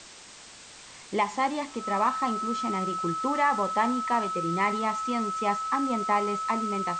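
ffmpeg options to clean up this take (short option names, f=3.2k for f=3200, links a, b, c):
-af "bandreject=f=1.3k:w=30,afwtdn=0.0063"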